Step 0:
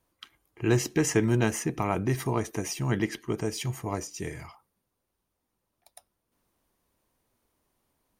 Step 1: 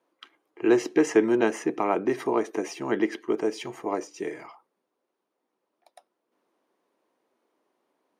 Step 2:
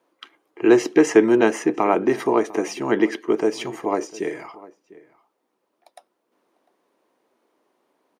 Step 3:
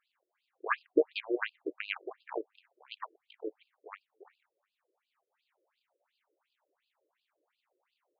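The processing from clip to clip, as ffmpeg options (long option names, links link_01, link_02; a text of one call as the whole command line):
ffmpeg -i in.wav -af "highpass=frequency=330:width=0.5412,highpass=frequency=330:width=1.3066,aemphasis=mode=reproduction:type=riaa,volume=3.5dB" out.wav
ffmpeg -i in.wav -filter_complex "[0:a]asplit=2[link_01][link_02];[link_02]adelay=699.7,volume=-20dB,highshelf=frequency=4000:gain=-15.7[link_03];[link_01][link_03]amix=inputs=2:normalize=0,volume=6dB" out.wav
ffmpeg -i in.wav -af "aeval=exprs='val(0)+0.5*0.15*sgn(val(0))':channel_layout=same,aeval=exprs='1*(cos(1*acos(clip(val(0)/1,-1,1)))-cos(1*PI/2))+0.0708*(cos(2*acos(clip(val(0)/1,-1,1)))-cos(2*PI/2))+0.355*(cos(3*acos(clip(val(0)/1,-1,1)))-cos(3*PI/2))+0.0112*(cos(5*acos(clip(val(0)/1,-1,1)))-cos(5*PI/2))':channel_layout=same,afftfilt=real='re*between(b*sr/1024,420*pow(3600/420,0.5+0.5*sin(2*PI*2.8*pts/sr))/1.41,420*pow(3600/420,0.5+0.5*sin(2*PI*2.8*pts/sr))*1.41)':imag='im*between(b*sr/1024,420*pow(3600/420,0.5+0.5*sin(2*PI*2.8*pts/sr))/1.41,420*pow(3600/420,0.5+0.5*sin(2*PI*2.8*pts/sr))*1.41)':win_size=1024:overlap=0.75" out.wav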